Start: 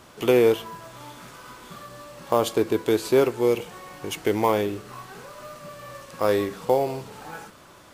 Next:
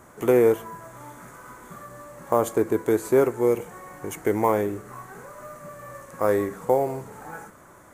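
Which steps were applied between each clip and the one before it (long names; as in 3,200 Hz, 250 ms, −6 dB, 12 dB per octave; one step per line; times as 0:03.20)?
flat-topped bell 3,700 Hz −14 dB 1.3 octaves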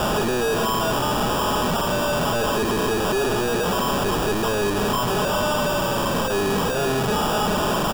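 sign of each sample alone
decimation without filtering 21×
comb filter 4.8 ms, depth 33%
level +3.5 dB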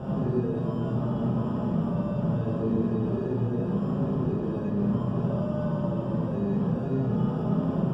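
resonant band-pass 150 Hz, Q 1.4
flanger 0.26 Hz, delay 7.5 ms, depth 2.1 ms, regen +69%
convolution reverb RT60 1.1 s, pre-delay 25 ms, DRR −5 dB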